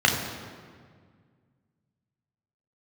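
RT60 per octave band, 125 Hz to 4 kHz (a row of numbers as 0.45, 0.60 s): 2.7, 2.4, 1.9, 1.7, 1.6, 1.2 s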